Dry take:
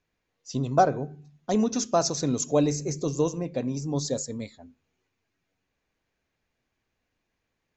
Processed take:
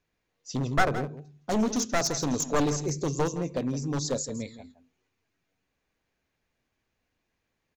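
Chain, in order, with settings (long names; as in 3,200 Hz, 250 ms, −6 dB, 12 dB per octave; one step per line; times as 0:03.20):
wavefolder on the positive side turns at −21.5 dBFS
on a send: single-tap delay 165 ms −13.5 dB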